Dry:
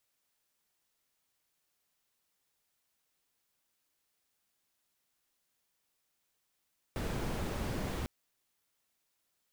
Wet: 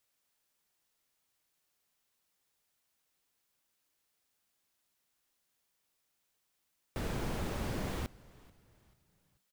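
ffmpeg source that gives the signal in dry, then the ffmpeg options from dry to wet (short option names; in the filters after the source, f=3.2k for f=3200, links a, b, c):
-f lavfi -i "anoisesrc=c=brown:a=0.0785:d=1.1:r=44100:seed=1"
-filter_complex "[0:a]asplit=4[a][b][c][d];[b]adelay=436,afreqshift=-65,volume=-22.5dB[e];[c]adelay=872,afreqshift=-130,volume=-30.2dB[f];[d]adelay=1308,afreqshift=-195,volume=-38dB[g];[a][e][f][g]amix=inputs=4:normalize=0"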